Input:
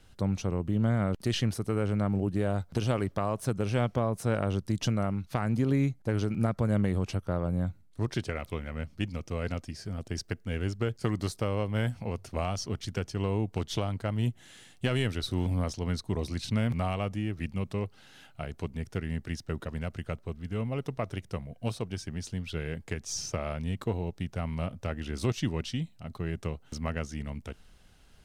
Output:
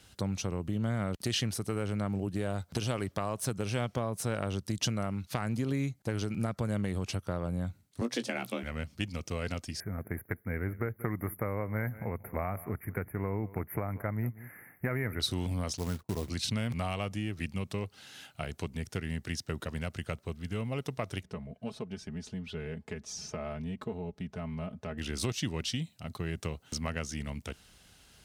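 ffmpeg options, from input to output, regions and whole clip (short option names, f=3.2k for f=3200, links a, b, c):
-filter_complex "[0:a]asettb=1/sr,asplit=3[a][b][c];[a]atrim=end=8.014[d];[b]atrim=start=8.01:end=8.63,asetpts=PTS-STARTPTS,afade=t=in:d=0.004:c=qsin,afade=t=out:st=0.616:d=0.004:c=qsin,afreqshift=120,asplit=2[e][f];[f]adelay=17,volume=-10dB[g];[e][g]amix=inputs=2:normalize=0,atrim=end_sample=27342[h];[c]atrim=start=8.626[i];[d][h]acrossfade=d=0.004:c1=hsin:c2=qsin[j];[j][i]acrossfade=d=0.004:c1=qsin:c2=hsin,asettb=1/sr,asplit=3[k][l][m];[k]atrim=end=9.804[n];[l]atrim=start=9.8:end=15.2,asetpts=PTS-STARTPTS,afade=t=in:d=0.004:c=qsin,afade=t=out:st=5.396:d=0.004:c=qsin,asuperstop=centerf=5300:order=20:qfactor=0.6,highshelf=f=3.2k:g=9.5,aecho=1:1:184:0.106,atrim=end_sample=238140[o];[m]atrim=start=15.196[p];[n][o]acrossfade=d=0.004:c1=hsin:c2=qsin[q];[q][p]acrossfade=d=0.004:c1=qsin:c2=hsin,asettb=1/sr,asplit=3[r][s][t];[r]atrim=end=15.774[u];[s]atrim=start=15.77:end=16.3,asetpts=PTS-STARTPTS,afade=t=in:d=0.004:c=qsin,afade=t=out:st=0.526:d=0.004:c=qsin,agate=range=-20dB:threshold=-45dB:ratio=16:release=100:detection=peak,lowpass=f=1.6k:w=0.5412,lowpass=f=1.6k:w=1.3066,acrusher=bits=5:mode=log:mix=0:aa=0.000001[v];[t]atrim=start=16.296[w];[u][v]acrossfade=d=0.004:c1=hsin:c2=qsin[x];[x][w]acrossfade=d=0.004:c1=qsin:c2=hsin,asettb=1/sr,asplit=3[y][z][aa];[y]atrim=end=21.234[ab];[z]atrim=start=21.23:end=24.98,asetpts=PTS-STARTPTS,afade=t=in:d=0.004:c=qsin,afade=t=out:st=3.746:d=0.004:c=qsin,lowpass=f=1.1k:p=1,aecho=1:1:4.7:0.72,atrim=end_sample=165375,acompressor=threshold=-42dB:ratio=1.5:attack=3.2:release=140:knee=1:detection=peak[ac];[aa]atrim=start=24.976[ad];[ab][ac]acrossfade=d=0.004:c1=hsin:c2=qsin[ae];[ae][ad]acrossfade=d=0.004:c1=qsin:c2=hsin,highpass=55,acompressor=threshold=-32dB:ratio=2,highshelf=f=2.3k:g=8.5"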